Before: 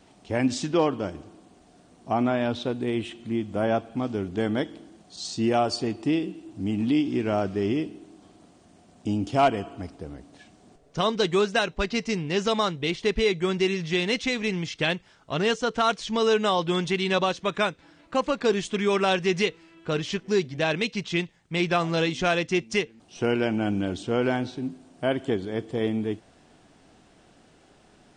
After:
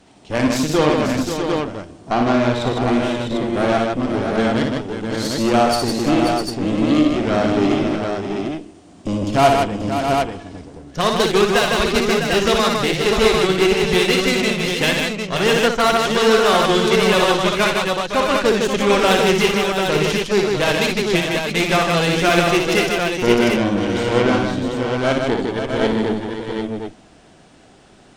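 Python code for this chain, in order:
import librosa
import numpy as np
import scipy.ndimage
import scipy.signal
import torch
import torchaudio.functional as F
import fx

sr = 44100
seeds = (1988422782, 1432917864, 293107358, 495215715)

y = fx.cheby_harmonics(x, sr, harmonics=(8,), levels_db=(-17,), full_scale_db=-10.5)
y = fx.echo_multitap(y, sr, ms=(59, 72, 156, 533, 653, 747), db=(-5.0, -13.0, -4.0, -8.5, -7.5, -4.5))
y = y * librosa.db_to_amplitude(4.5)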